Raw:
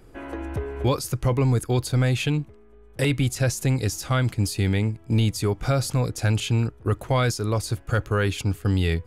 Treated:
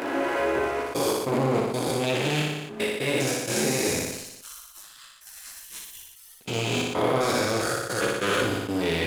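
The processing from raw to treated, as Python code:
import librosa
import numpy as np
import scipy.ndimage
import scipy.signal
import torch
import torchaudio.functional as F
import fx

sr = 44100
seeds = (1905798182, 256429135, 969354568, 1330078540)

y = fx.spec_steps(x, sr, hold_ms=400)
y = fx.recorder_agc(y, sr, target_db=-22.5, rise_db_per_s=13.0, max_gain_db=30)
y = fx.step_gate(y, sr, bpm=95, pattern='xxxxx.x.xx.', floor_db=-24.0, edge_ms=4.5)
y = fx.chorus_voices(y, sr, voices=2, hz=0.37, base_ms=20, depth_ms=4.3, mix_pct=50)
y = fx.leveller(y, sr, passes=3)
y = scipy.signal.sosfilt(scipy.signal.butter(2, 330.0, 'highpass', fs=sr, output='sos'), y)
y = fx.leveller(y, sr, passes=1)
y = fx.spec_gate(y, sr, threshold_db=-30, keep='weak', at=(3.99, 6.41))
y = fx.room_flutter(y, sr, wall_m=10.2, rt60_s=0.73)
y = fx.sustainer(y, sr, db_per_s=50.0)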